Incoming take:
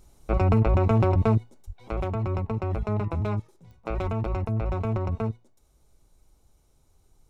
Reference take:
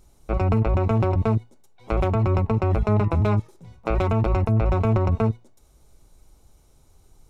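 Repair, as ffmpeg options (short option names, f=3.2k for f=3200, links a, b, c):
-filter_complex "[0:a]adeclick=t=4,asplit=3[a][b][c];[a]afade=t=out:st=1.66:d=0.02[d];[b]highpass=f=140:w=0.5412,highpass=f=140:w=1.3066,afade=t=in:st=1.66:d=0.02,afade=t=out:st=1.78:d=0.02[e];[c]afade=t=in:st=1.78:d=0.02[f];[d][e][f]amix=inputs=3:normalize=0,asplit=3[g][h][i];[g]afade=t=out:st=4.02:d=0.02[j];[h]highpass=f=140:w=0.5412,highpass=f=140:w=1.3066,afade=t=in:st=4.02:d=0.02,afade=t=out:st=4.14:d=0.02[k];[i]afade=t=in:st=4.14:d=0.02[l];[j][k][l]amix=inputs=3:normalize=0,asetnsamples=n=441:p=0,asendcmd='1.88 volume volume 7dB',volume=0dB"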